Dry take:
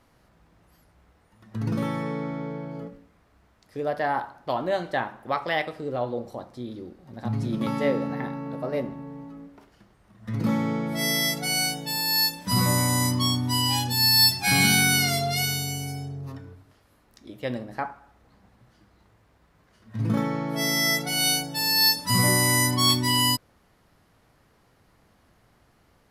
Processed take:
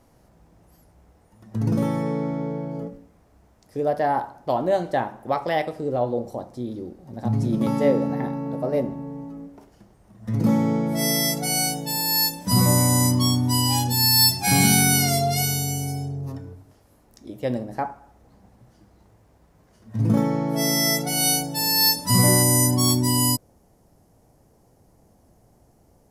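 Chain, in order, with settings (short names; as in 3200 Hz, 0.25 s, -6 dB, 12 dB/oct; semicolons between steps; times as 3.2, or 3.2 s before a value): band shelf 2200 Hz -8 dB 2.3 oct, from 22.42 s -14.5 dB; gain +5 dB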